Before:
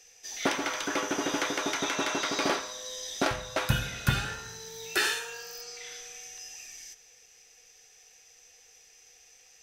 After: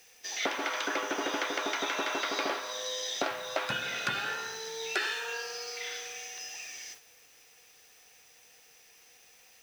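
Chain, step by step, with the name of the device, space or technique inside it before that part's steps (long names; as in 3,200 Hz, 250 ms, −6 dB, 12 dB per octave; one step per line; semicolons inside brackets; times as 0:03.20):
baby monitor (band-pass filter 370–4,500 Hz; downward compressor, threshold −36 dBFS, peak gain reduction 12 dB; white noise bed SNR 21 dB; noise gate −56 dBFS, range −6 dB)
level +7 dB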